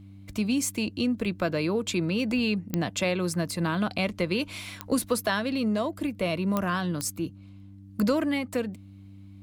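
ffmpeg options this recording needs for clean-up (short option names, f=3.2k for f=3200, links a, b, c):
-af "adeclick=t=4,bandreject=f=98.1:t=h:w=4,bandreject=f=196.2:t=h:w=4,bandreject=f=294.3:t=h:w=4"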